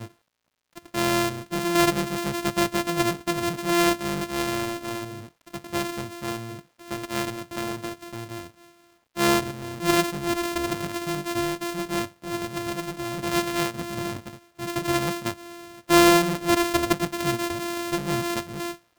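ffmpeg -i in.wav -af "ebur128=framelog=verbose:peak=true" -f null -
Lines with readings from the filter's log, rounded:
Integrated loudness:
  I:         -25.5 LUFS
  Threshold: -36.2 LUFS
Loudness range:
  LRA:         9.7 LU
  Threshold: -46.2 LUFS
  LRA low:   -32.3 LUFS
  LRA high:  -22.6 LUFS
True peak:
  Peak:       -4.0 dBFS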